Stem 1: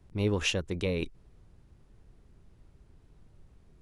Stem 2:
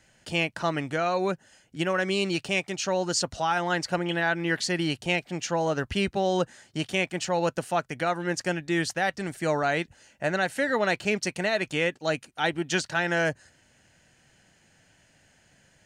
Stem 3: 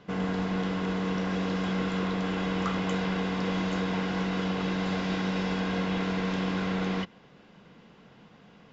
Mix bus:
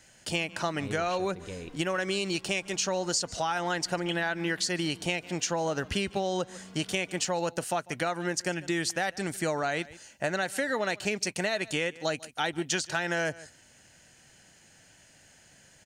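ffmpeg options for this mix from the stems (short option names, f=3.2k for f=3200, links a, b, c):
-filter_complex "[0:a]adelay=650,volume=-10dB[a];[1:a]bass=f=250:g=-2,treble=f=4k:g=6,volume=2dB,asplit=2[b][c];[c]volume=-23.5dB[d];[2:a]acompressor=threshold=-35dB:ratio=6,asplit=2[e][f];[f]adelay=3.3,afreqshift=0.52[g];[e][g]amix=inputs=2:normalize=1,adelay=250,volume=-9dB[h];[d]aecho=0:1:146:1[i];[a][b][h][i]amix=inputs=4:normalize=0,acompressor=threshold=-26dB:ratio=6"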